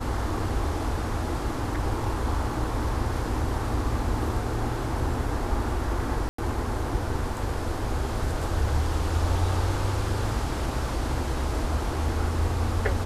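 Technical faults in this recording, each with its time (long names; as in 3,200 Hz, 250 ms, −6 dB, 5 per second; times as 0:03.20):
0:06.29–0:06.38: drop-out 94 ms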